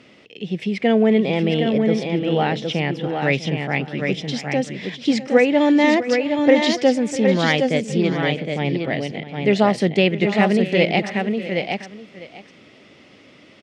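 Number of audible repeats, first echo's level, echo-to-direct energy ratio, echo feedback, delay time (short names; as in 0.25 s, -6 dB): 3, -15.5 dB, -4.5 dB, no steady repeat, 0.65 s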